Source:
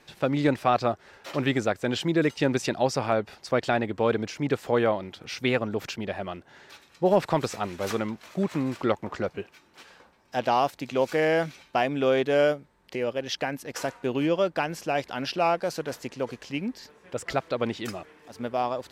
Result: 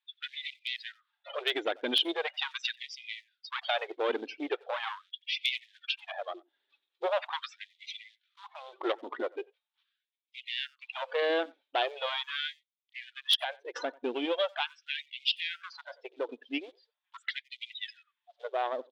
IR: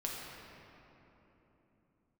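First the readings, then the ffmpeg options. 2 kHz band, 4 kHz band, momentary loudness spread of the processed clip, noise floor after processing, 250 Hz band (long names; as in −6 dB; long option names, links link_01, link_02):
−3.5 dB, +4.5 dB, 16 LU, below −85 dBFS, −14.0 dB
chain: -filter_complex "[0:a]afftdn=noise_reduction=35:noise_floor=-34,asplit=2[link_01][link_02];[link_02]acompressor=threshold=-34dB:ratio=16,volume=-1dB[link_03];[link_01][link_03]amix=inputs=2:normalize=0,aeval=exprs='(tanh(7.94*val(0)+0.45)-tanh(0.45))/7.94':channel_layout=same,acrusher=bits=8:mode=log:mix=0:aa=0.000001,lowpass=frequency=3500:width_type=q:width=6.5,aeval=exprs='0.266*(abs(mod(val(0)/0.266+3,4)-2)-1)':channel_layout=same,asplit=2[link_04][link_05];[link_05]adelay=90,highpass=300,lowpass=3400,asoftclip=type=hard:threshold=-21dB,volume=-24dB[link_06];[link_04][link_06]amix=inputs=2:normalize=0,afftfilt=real='re*gte(b*sr/1024,240*pow(2000/240,0.5+0.5*sin(2*PI*0.41*pts/sr)))':imag='im*gte(b*sr/1024,240*pow(2000/240,0.5+0.5*sin(2*PI*0.41*pts/sr)))':win_size=1024:overlap=0.75,volume=-3.5dB"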